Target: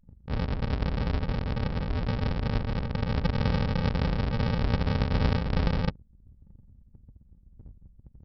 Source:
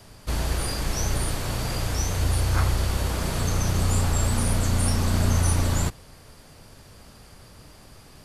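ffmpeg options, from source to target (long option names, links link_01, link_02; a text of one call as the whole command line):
ffmpeg -i in.wav -af "highpass=190,equalizer=frequency=200:width_type=q:width=4:gain=7,equalizer=frequency=300:width_type=q:width=4:gain=8,equalizer=frequency=470:width_type=q:width=4:gain=9,equalizer=frequency=800:width_type=q:width=4:gain=-6,equalizer=frequency=1200:width_type=q:width=4:gain=-4,equalizer=frequency=1900:width_type=q:width=4:gain=-7,lowpass=frequency=2100:width=0.5412,lowpass=frequency=2100:width=1.3066,aecho=1:1:7:0.86,aresample=11025,acrusher=samples=32:mix=1:aa=0.000001,aresample=44100,anlmdn=1" out.wav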